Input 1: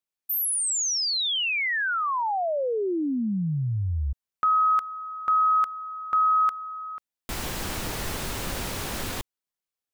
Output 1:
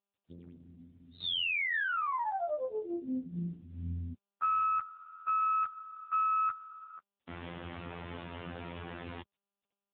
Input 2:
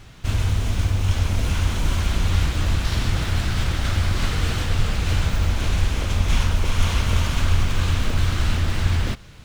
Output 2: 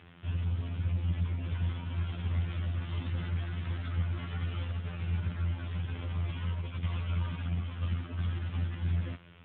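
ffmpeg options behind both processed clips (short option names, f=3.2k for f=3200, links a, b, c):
-af "afftfilt=real='hypot(re,im)*cos(PI*b)':imag='0':win_size=2048:overlap=0.75,aeval=exprs='(tanh(6.31*val(0)+0.5)-tanh(0.5))/6.31':c=same" -ar 8000 -c:a libopencore_amrnb -b:a 10200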